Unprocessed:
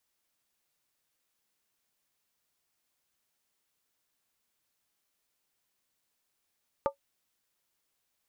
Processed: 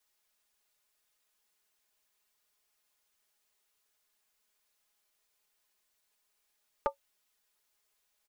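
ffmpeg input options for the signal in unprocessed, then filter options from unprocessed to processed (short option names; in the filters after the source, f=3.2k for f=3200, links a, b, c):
-f lavfi -i "aevalsrc='0.0891*pow(10,-3*t/0.11)*sin(2*PI*557*t)+0.0631*pow(10,-3*t/0.087)*sin(2*PI*887.9*t)+0.0447*pow(10,-3*t/0.075)*sin(2*PI*1189.8*t)':d=0.63:s=44100"
-af "equalizer=f=170:t=o:w=1.5:g=-10.5,aecho=1:1:4.8:0.8"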